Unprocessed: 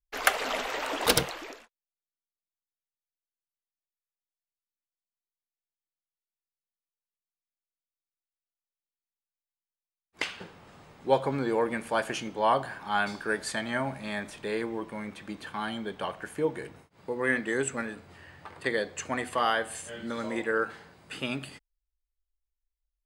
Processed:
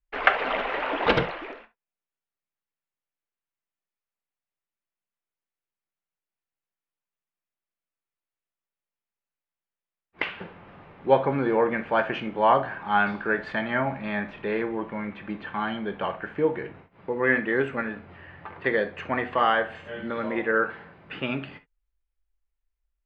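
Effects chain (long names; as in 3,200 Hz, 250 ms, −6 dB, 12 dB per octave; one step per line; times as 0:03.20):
low-pass filter 2,800 Hz 24 dB per octave
on a send: convolution reverb, pre-delay 5 ms, DRR 10 dB
on the sum: level +4.5 dB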